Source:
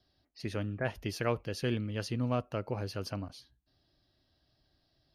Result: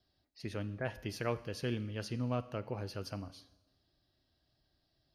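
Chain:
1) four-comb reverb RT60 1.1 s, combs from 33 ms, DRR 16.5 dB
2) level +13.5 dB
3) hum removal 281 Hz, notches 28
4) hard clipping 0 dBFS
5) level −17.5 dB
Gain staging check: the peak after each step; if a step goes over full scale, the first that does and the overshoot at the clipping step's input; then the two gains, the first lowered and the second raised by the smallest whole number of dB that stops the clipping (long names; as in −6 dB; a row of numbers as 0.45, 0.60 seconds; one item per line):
−16.5, −3.0, −3.0, −3.0, −20.5 dBFS
no step passes full scale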